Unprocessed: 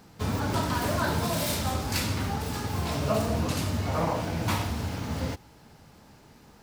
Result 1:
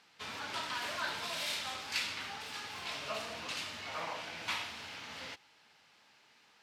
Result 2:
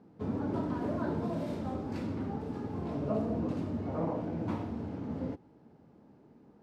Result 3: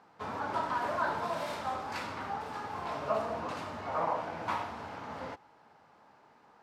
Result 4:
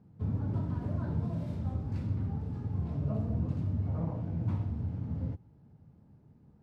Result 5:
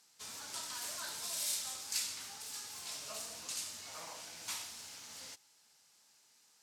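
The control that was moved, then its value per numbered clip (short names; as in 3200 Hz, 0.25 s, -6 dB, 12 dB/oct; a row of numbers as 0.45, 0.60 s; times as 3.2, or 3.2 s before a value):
band-pass, frequency: 2800, 300, 1000, 120, 7600 Hz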